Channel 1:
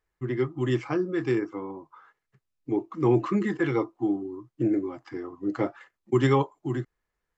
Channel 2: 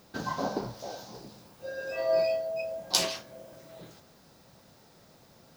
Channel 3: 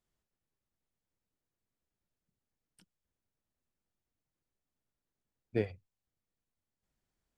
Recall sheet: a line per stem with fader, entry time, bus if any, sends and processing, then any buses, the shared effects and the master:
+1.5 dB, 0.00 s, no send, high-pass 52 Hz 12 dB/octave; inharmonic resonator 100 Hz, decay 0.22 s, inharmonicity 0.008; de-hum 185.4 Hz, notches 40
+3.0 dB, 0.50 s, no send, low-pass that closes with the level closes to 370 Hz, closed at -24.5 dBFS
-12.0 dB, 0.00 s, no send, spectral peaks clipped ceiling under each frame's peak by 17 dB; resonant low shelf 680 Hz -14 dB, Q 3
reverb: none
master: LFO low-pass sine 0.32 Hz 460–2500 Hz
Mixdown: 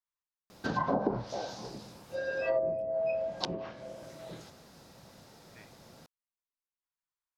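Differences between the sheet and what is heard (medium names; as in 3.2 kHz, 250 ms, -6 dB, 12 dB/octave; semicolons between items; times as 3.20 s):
stem 1: muted; stem 3: missing spectral peaks clipped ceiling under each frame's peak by 17 dB; master: missing LFO low-pass sine 0.32 Hz 460–2500 Hz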